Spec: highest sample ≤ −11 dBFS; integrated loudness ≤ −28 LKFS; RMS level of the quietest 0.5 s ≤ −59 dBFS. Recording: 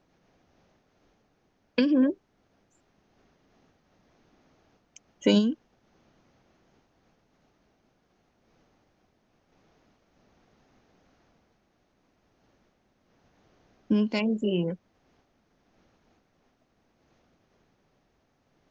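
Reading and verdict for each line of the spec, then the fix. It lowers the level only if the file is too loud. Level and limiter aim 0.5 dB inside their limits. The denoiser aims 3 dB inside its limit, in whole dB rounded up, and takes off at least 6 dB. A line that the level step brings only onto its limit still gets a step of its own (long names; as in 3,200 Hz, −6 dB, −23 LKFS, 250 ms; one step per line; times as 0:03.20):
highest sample −9.0 dBFS: out of spec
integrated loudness −26.5 LKFS: out of spec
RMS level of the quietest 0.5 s −70 dBFS: in spec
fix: level −2 dB
brickwall limiter −11.5 dBFS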